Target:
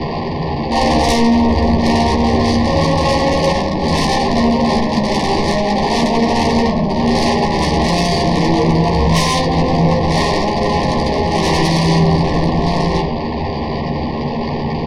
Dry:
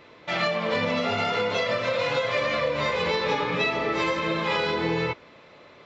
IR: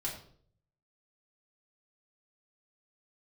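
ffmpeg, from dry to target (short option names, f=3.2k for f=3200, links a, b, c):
-filter_complex "[0:a]aeval=exprs='val(0)+0.5*0.0398*sgn(val(0))':c=same,acrossover=split=370|1500[a][b][c];[c]adynamicsmooth=sensitivity=5:basefreq=2.8k[d];[a][b][d]amix=inputs=3:normalize=0,asetrate=17375,aresample=44100,lowpass=f=4.7k:t=q:w=15,aeval=exprs='0.335*sin(PI/2*3.98*val(0)/0.335)':c=same,asuperstop=centerf=1400:order=20:qfactor=2.3,asplit=2[e][f];[f]adelay=13,volume=-5dB[g];[e][g]amix=inputs=2:normalize=0,asplit=2[h][i];[1:a]atrim=start_sample=2205,lowpass=6k[j];[i][j]afir=irnorm=-1:irlink=0,volume=-8dB[k];[h][k]amix=inputs=2:normalize=0,volume=-4.5dB"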